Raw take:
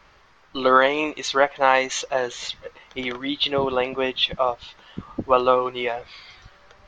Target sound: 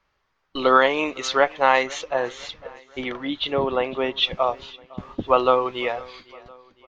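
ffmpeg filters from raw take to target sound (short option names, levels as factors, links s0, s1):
-filter_complex "[0:a]agate=range=0.141:threshold=0.00794:ratio=16:detection=peak,asettb=1/sr,asplit=3[s0][s1][s2];[s0]atrim=end=1.834[s3];[s1]atrim=start=1.83:end=4.17,asetpts=PTS-STARTPTS,afade=t=in:d=0.004:c=qsin,afade=t=out:st=2.336:d=0.004:c=qsin,highshelf=f=3900:g=-10.5[s4];[s2]atrim=start=4.166[s5];[s3][s4]acrossfade=d=0.004:c1=hsin:c2=qsin[s6];[s6][s5]acrossfade=d=0.004:c1=qsin:c2=hsin,aecho=1:1:507|1014|1521:0.075|0.0382|0.0195"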